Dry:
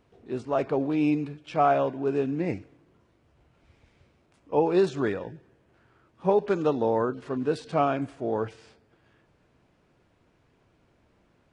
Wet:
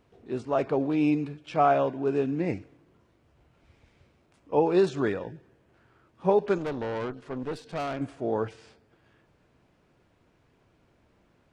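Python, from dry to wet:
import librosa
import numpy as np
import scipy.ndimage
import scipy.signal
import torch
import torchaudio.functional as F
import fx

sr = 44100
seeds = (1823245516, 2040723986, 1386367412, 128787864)

y = fx.tube_stage(x, sr, drive_db=28.0, bias=0.8, at=(6.58, 8.01))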